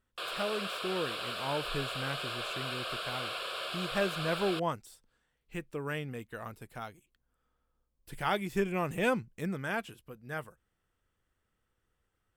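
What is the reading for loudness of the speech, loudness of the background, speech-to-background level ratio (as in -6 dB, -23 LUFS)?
-36.5 LUFS, -36.5 LUFS, 0.0 dB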